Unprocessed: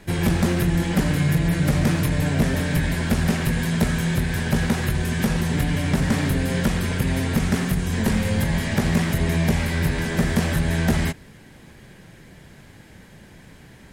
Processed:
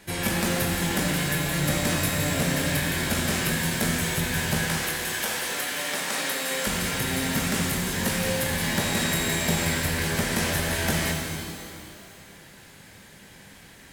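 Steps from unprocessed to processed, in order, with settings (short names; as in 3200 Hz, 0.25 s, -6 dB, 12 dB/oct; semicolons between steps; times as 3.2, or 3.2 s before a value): 4.68–6.67 HPF 460 Hz 12 dB/oct; tilt +2 dB/oct; shimmer reverb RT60 2.2 s, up +12 st, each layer -8 dB, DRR 0 dB; gain -3.5 dB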